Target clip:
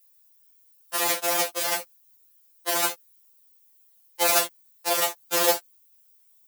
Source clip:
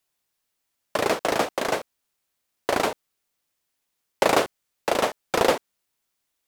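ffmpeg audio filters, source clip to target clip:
-af "aemphasis=mode=production:type=riaa,afftfilt=real='re*2.83*eq(mod(b,8),0)':imag='im*2.83*eq(mod(b,8),0)':win_size=2048:overlap=0.75,volume=-1dB"

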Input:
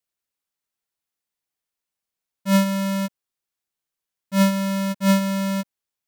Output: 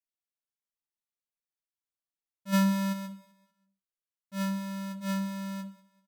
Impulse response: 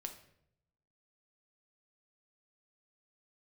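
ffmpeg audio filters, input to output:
-filter_complex "[1:a]atrim=start_sample=2205,afade=t=out:st=0.37:d=0.01,atrim=end_sample=16758,asetrate=83790,aresample=44100[a];[0:a][a]afir=irnorm=-1:irlink=0,asplit=3[b][c][d];[b]afade=t=out:st=2.52:d=0.02[e];[c]acontrast=87,afade=t=in:st=2.52:d=0.02,afade=t=out:st=2.92:d=0.02[f];[d]afade=t=in:st=2.92:d=0.02[g];[e][f][g]amix=inputs=3:normalize=0,aecho=1:1:193|386|579:0.0944|0.0359|0.0136,volume=-5.5dB"

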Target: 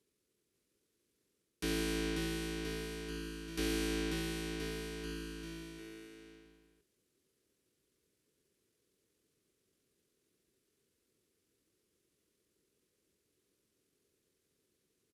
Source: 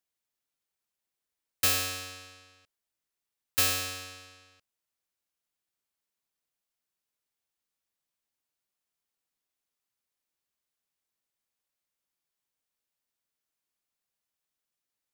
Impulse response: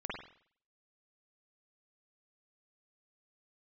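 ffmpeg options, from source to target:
-filter_complex "[0:a]acrossover=split=9800[a][b];[b]acompressor=threshold=-38dB:ratio=4:attack=1:release=60[c];[a][c]amix=inputs=2:normalize=0,asplit=2[d][e];[e]aeval=exprs='(mod(18.8*val(0)+1,2)-1)/18.8':c=same,volume=-6dB[f];[d][f]amix=inputs=2:normalize=0,asetrate=26222,aresample=44100,atempo=1.68179,highpass=43,areverse,acompressor=threshold=-39dB:ratio=6,areverse,lowshelf=f=560:t=q:w=3:g=11,aecho=1:1:540|1026|1463|1857|2211:0.631|0.398|0.251|0.158|0.1"

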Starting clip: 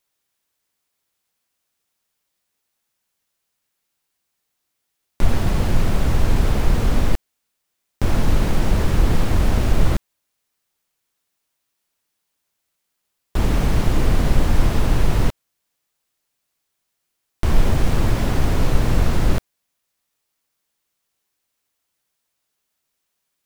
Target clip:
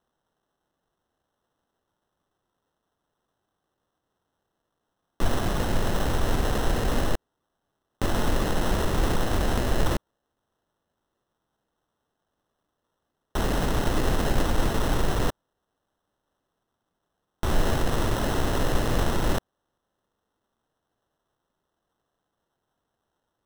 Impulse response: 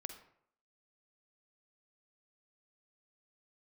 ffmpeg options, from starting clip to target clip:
-af "bass=f=250:g=-9,treble=f=4k:g=-5,acrusher=samples=19:mix=1:aa=0.000001"

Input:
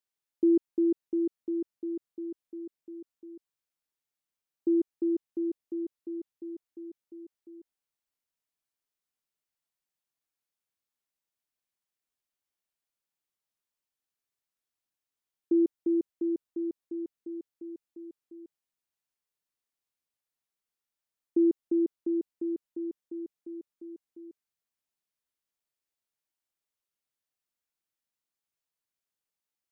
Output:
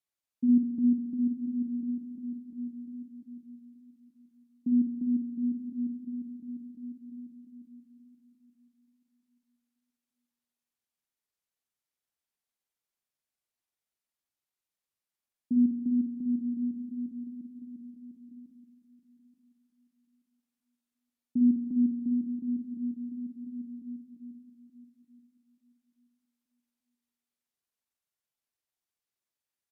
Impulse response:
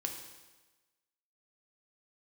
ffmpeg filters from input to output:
-filter_complex "[0:a]asetrate=32097,aresample=44100,atempo=1.37395,aecho=1:1:880|1760|2640:0.211|0.0507|0.0122,asplit=2[a][b];[1:a]atrim=start_sample=2205,asetrate=31311,aresample=44100,adelay=53[c];[b][c]afir=irnorm=-1:irlink=0,volume=-7.5dB[d];[a][d]amix=inputs=2:normalize=0,volume=-3.5dB"

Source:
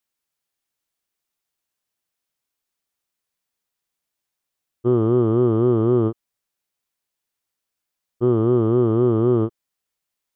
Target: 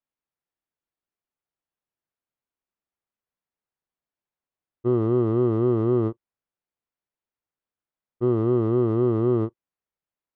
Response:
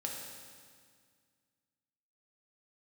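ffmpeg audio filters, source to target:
-filter_complex "[0:a]adynamicsmooth=sensitivity=5:basefreq=2.1k,asplit=2[a][b];[1:a]atrim=start_sample=2205,atrim=end_sample=3528,asetrate=79380,aresample=44100[c];[b][c]afir=irnorm=-1:irlink=0,volume=-15.5dB[d];[a][d]amix=inputs=2:normalize=0,volume=-4.5dB"

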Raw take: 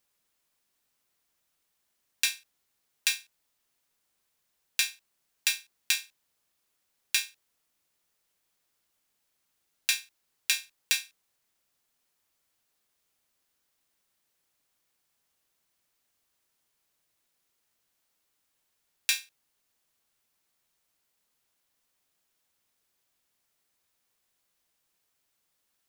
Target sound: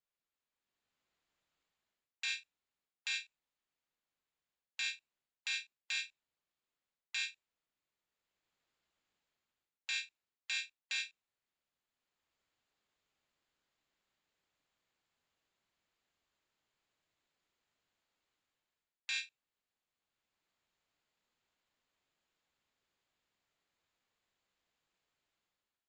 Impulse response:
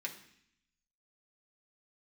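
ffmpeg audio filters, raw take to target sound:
-af "afftdn=nr=18:nf=-50,equalizer=f=5.8k:w=2.4:g=-11,dynaudnorm=f=540:g=3:m=12dB,alimiter=limit=-8.5dB:level=0:latency=1:release=65,areverse,acompressor=threshold=-38dB:ratio=8,areverse,aresample=16000,aresample=44100,volume=3.5dB"

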